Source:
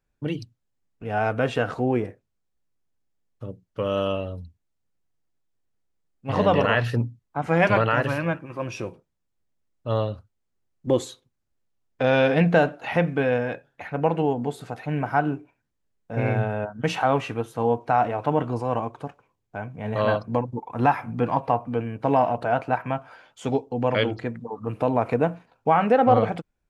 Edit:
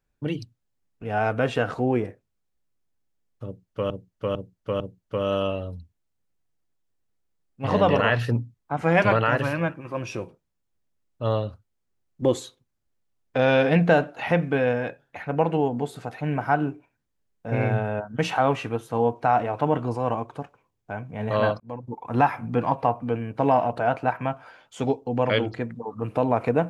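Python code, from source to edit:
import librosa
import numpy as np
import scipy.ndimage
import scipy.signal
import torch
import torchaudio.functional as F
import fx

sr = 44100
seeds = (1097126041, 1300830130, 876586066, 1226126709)

y = fx.edit(x, sr, fx.repeat(start_s=3.45, length_s=0.45, count=4),
    fx.fade_in_span(start_s=20.25, length_s=0.46), tone=tone)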